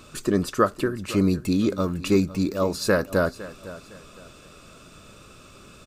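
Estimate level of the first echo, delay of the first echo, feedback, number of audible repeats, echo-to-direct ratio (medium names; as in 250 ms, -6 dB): -17.0 dB, 508 ms, 32%, 2, -16.5 dB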